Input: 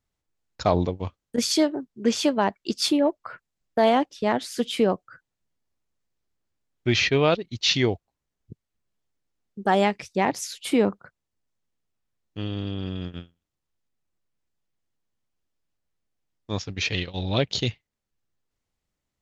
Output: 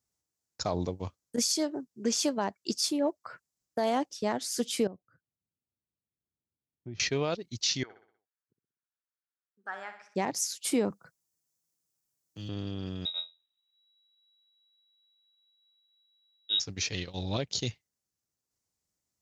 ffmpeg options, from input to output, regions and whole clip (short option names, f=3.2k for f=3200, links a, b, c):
-filter_complex "[0:a]asettb=1/sr,asplit=3[a][b][c];[a]atrim=end=4.874[d];[b]atrim=start=4.87:end=7,asetpts=PTS-STARTPTS,afade=t=in:d=0.004:c=qsin,afade=t=out:st=2.126:d=0.004:c=qsin,bandpass=f=120:t=q:w=0.5,acompressor=threshold=-40dB:ratio=2:attack=3.2:release=140:knee=1:detection=peak[e];[c]atrim=start=6.996[f];[d][e]acrossfade=d=0.004:c1=hsin:c2=qsin[g];[g][f]acrossfade=d=0.004:c1=qsin:c2=hsin,asettb=1/sr,asplit=3[h][i][j];[h]atrim=end=7.834[k];[i]atrim=start=7.83:end=10.16,asetpts=PTS-STARTPTS,afade=t=in:d=0.004:c=qsin,afade=t=out:st=2.326:d=0.004:c=qsin,bandpass=f=1.5k:t=q:w=4.3,aecho=1:1:62|124|186|248|310:0.355|0.17|0.0817|0.0392|0.0188,atrim=end_sample=102753[l];[j]atrim=start=10.156[m];[k][l]acrossfade=d=0.004:c1=hsin:c2=qsin[n];[n][m]acrossfade=d=0.004:c1=qsin:c2=hsin,asettb=1/sr,asplit=3[o][p][q];[o]atrim=end=10.904[r];[p]atrim=start=10.9:end=12.49,asetpts=PTS-STARTPTS,afade=t=in:d=0.004:c=qsin,afade=t=out:st=1.586:d=0.004:c=qsin,highshelf=f=7.3k:g=10,aecho=1:1:6.1:0.38,atrim=end_sample=70119,acrossover=split=200|3000[s][t][u];[t]acompressor=threshold=-44dB:ratio=6:attack=3.2:release=140:knee=2.83:detection=peak[v];[s][v][u]amix=inputs=3:normalize=0[w];[q]atrim=start=12.486[x];[r][w]acrossfade=d=0.004:c1=hsin:c2=qsin[y];[y][x]acrossfade=d=0.004:c1=qsin:c2=hsin,asettb=1/sr,asplit=3[z][aa][ab];[z]atrim=end=13.054[ac];[aa]atrim=start=13.05:end=16.6,asetpts=PTS-STARTPTS,afade=t=in:d=0.004:c=qsin,afade=t=out:st=3.546:d=0.004:c=qsin,lowshelf=f=180:g=10,lowpass=f=3.3k:t=q:w=0.5098,lowpass=f=3.3k:t=q:w=0.6013,lowpass=f=3.3k:t=q:w=0.9,lowpass=f=3.3k:t=q:w=2.563,afreqshift=-3900[ad];[ab]atrim=start=16.596[ae];[ac][ad]acrossfade=d=0.004:c1=hsin:c2=qsin[af];[af][ae]acrossfade=d=0.004:c1=qsin:c2=hsin,highpass=68,highshelf=f=4.3k:t=q:w=1.5:g=8.5,alimiter=limit=-12.5dB:level=0:latency=1:release=234,volume=-5.5dB"